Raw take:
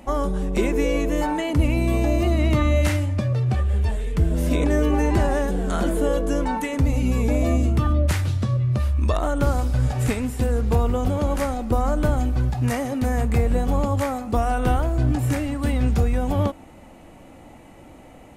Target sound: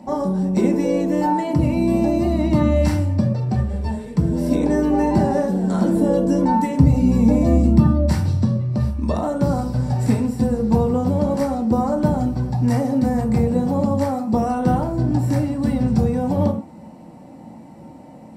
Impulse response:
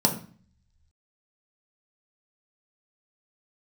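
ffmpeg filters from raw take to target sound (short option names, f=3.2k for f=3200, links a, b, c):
-filter_complex "[0:a]asettb=1/sr,asplit=3[a][b][c];[a]atrim=end=5.954[d];[b]atrim=start=5.95:end=7.8,asetpts=PTS-STARTPTS,afade=t=in:d=0.004:c=qsin,afade=t=out:st=1.846:d=0.004:c=qsin,lowshelf=f=160:g=8.5[e];[c]atrim=start=7.796[f];[d][e]acrossfade=d=0.004:c1=hsin:c2=qsin[g];[g][f]acrossfade=d=0.004:c1=qsin:c2=hsin[h];[1:a]atrim=start_sample=2205,atrim=end_sample=6174[i];[h][i]afir=irnorm=-1:irlink=0,volume=-14dB"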